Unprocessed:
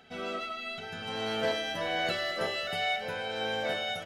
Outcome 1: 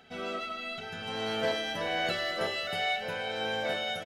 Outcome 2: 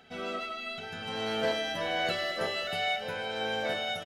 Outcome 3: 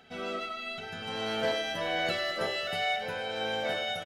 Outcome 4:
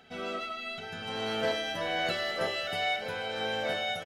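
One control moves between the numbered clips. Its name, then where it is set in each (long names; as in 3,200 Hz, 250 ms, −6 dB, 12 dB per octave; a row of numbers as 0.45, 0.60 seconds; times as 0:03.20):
single-tap delay, delay time: 363, 150, 97, 966 milliseconds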